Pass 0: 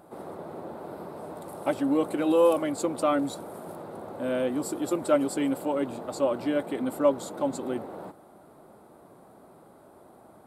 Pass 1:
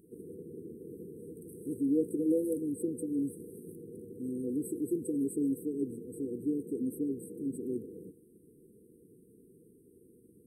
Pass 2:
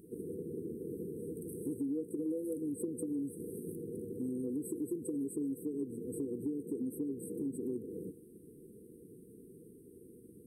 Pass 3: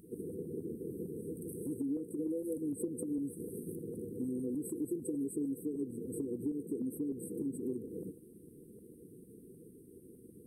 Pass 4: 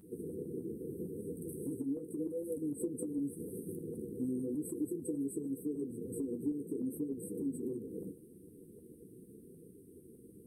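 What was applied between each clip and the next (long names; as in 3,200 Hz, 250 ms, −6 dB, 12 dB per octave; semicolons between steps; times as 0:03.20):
brick-wall band-stop 500–8,000 Hz; level −3.5 dB
downward compressor 6 to 1, threshold −39 dBFS, peak gain reduction 14.5 dB; level +4.5 dB
auto-filter notch saw up 6.6 Hz 340–2,800 Hz; level +1 dB
flanger 0.82 Hz, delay 9.7 ms, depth 6.4 ms, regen −33%; level +3.5 dB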